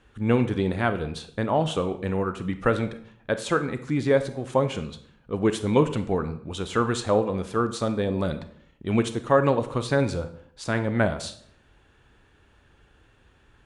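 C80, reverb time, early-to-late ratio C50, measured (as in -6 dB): 16.0 dB, 0.60 s, 13.0 dB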